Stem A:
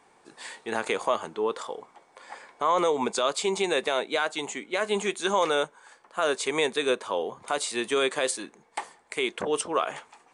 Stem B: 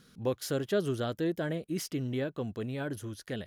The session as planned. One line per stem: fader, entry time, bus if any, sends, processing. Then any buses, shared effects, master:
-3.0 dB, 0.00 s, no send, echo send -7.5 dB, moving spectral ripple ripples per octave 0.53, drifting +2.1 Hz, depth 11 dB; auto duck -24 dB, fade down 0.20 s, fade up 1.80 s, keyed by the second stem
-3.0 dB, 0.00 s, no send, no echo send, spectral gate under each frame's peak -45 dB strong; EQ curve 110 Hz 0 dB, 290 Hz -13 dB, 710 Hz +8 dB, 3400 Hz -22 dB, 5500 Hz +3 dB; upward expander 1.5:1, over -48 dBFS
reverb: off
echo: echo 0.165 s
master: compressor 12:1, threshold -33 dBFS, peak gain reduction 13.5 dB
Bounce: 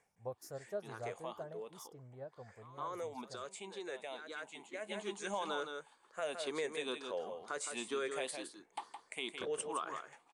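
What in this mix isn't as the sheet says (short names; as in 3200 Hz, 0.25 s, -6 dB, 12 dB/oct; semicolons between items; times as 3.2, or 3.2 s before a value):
stem A -3.0 dB -> -14.0 dB; stem B -3.0 dB -> -10.0 dB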